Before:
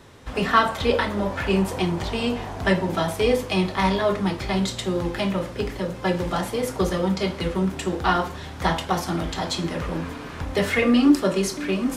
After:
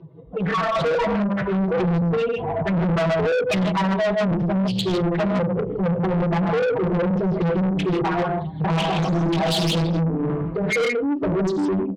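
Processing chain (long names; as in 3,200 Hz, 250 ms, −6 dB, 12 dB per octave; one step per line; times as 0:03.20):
expanding power law on the bin magnitudes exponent 3.2
0:08.49–0:10.70: reverse bouncing-ball delay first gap 20 ms, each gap 1.5×, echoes 5
brickwall limiter −17.5 dBFS, peak gain reduction 9.5 dB
downward compressor 6 to 1, threshold −29 dBFS, peak gain reduction 9 dB
loudspeaker in its box 160–4,500 Hz, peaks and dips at 160 Hz +9 dB, 230 Hz −6 dB, 440 Hz +4 dB, 680 Hz +4 dB, 1,700 Hz −8 dB, 2,800 Hz +5 dB
notch filter 1,400 Hz, Q 22
comb filter 6.1 ms, depth 82%
reverb whose tail is shaped and stops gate 180 ms rising, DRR 4 dB
automatic gain control gain up to 10.5 dB
soft clipping −21.5 dBFS, distortion −7 dB
highs frequency-modulated by the lows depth 0.32 ms
level +3 dB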